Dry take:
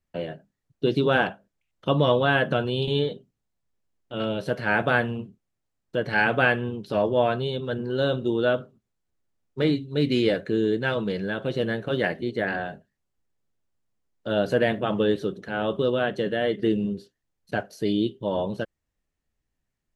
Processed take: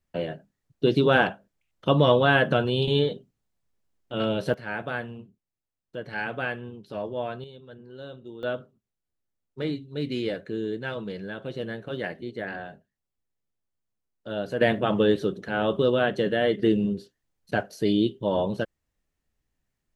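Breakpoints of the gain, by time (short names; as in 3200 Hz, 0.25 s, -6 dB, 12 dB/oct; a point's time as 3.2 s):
+1.5 dB
from 4.54 s -9.5 dB
from 7.44 s -17 dB
from 8.43 s -7 dB
from 14.61 s +1.5 dB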